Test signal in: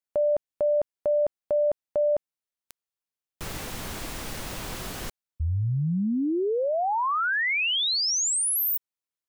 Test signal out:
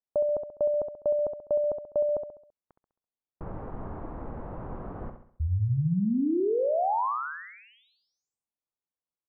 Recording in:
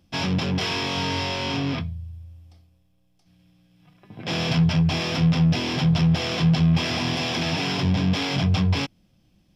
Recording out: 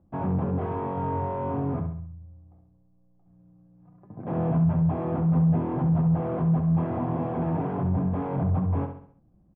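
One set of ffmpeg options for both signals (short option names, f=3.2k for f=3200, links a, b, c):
-filter_complex "[0:a]lowpass=f=1.1k:w=0.5412,lowpass=f=1.1k:w=1.3066,alimiter=limit=-18dB:level=0:latency=1:release=19,asplit=2[a][b];[b]aecho=0:1:67|134|201|268|335:0.398|0.175|0.0771|0.0339|0.0149[c];[a][c]amix=inputs=2:normalize=0,volume=-1dB"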